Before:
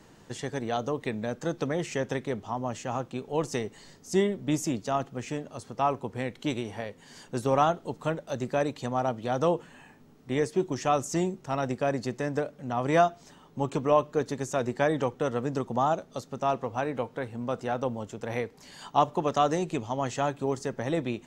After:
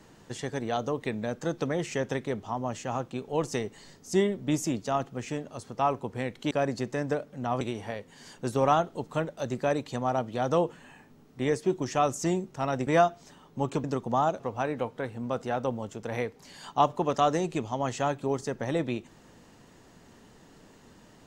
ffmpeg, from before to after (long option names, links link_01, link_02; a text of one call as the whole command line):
ffmpeg -i in.wav -filter_complex "[0:a]asplit=6[link_01][link_02][link_03][link_04][link_05][link_06];[link_01]atrim=end=6.512[link_07];[link_02]atrim=start=11.768:end=12.872[link_08];[link_03]atrim=start=6.508:end=11.772[link_09];[link_04]atrim=start=12.868:end=13.842[link_10];[link_05]atrim=start=15.478:end=16.042[link_11];[link_06]atrim=start=16.578[link_12];[link_07][link_08]acrossfade=duration=0.004:curve1=hsin:curve2=hsin[link_13];[link_13][link_09]acrossfade=duration=0.004:curve1=hsin:curve2=hsin[link_14];[link_14][link_10]acrossfade=duration=0.004:curve1=hsin:curve2=hsin[link_15];[link_15][link_11]acrossfade=duration=0.004:curve1=hsin:curve2=hsin[link_16];[link_16][link_12]acrossfade=duration=0.004:curve1=hsin:curve2=hsin" out.wav